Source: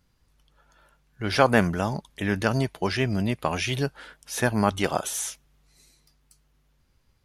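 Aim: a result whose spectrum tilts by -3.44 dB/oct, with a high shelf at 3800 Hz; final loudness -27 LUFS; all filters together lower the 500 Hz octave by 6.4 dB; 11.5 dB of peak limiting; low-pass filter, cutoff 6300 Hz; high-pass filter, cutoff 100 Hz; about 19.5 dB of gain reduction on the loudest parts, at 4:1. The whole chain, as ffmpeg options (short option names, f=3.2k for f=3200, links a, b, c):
-af "highpass=100,lowpass=6.3k,equalizer=f=500:t=o:g=-8.5,highshelf=f=3.8k:g=7,acompressor=threshold=-40dB:ratio=4,volume=17.5dB,alimiter=limit=-15.5dB:level=0:latency=1"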